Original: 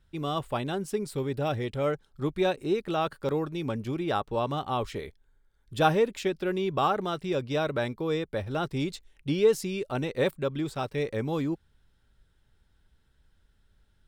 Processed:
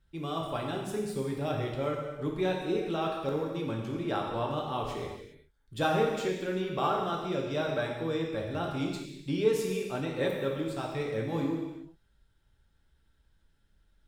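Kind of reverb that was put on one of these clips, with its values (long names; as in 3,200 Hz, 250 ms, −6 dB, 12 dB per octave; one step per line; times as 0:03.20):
reverb whose tail is shaped and stops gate 430 ms falling, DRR −1 dB
level −6 dB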